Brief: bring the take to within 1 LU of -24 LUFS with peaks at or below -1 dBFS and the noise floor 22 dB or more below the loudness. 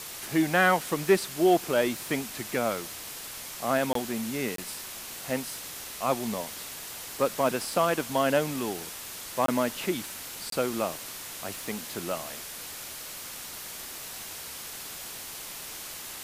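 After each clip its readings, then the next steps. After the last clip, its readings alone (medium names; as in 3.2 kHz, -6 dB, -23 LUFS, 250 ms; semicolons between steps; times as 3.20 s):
dropouts 4; longest dropout 23 ms; noise floor -41 dBFS; noise floor target -52 dBFS; loudness -30.0 LUFS; peak level -10.0 dBFS; loudness target -24.0 LUFS
-> interpolate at 3.93/4.56/9.46/10.50 s, 23 ms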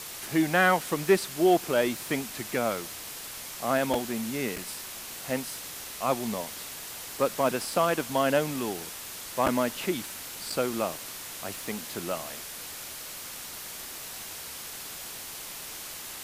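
dropouts 0; noise floor -41 dBFS; noise floor target -52 dBFS
-> noise reduction 11 dB, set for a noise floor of -41 dBFS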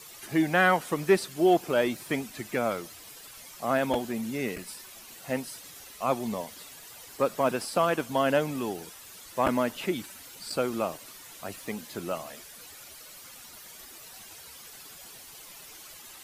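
noise floor -48 dBFS; noise floor target -51 dBFS
-> noise reduction 6 dB, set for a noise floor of -48 dBFS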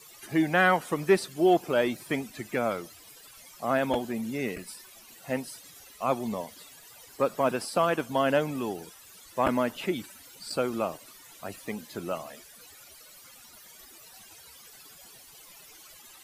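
noise floor -52 dBFS; loudness -28.5 LUFS; peak level -10.0 dBFS; loudness target -24.0 LUFS
-> trim +4.5 dB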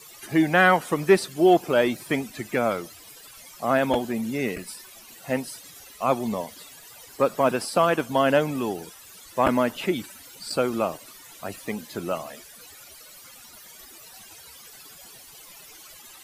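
loudness -24.0 LUFS; peak level -5.5 dBFS; noise floor -47 dBFS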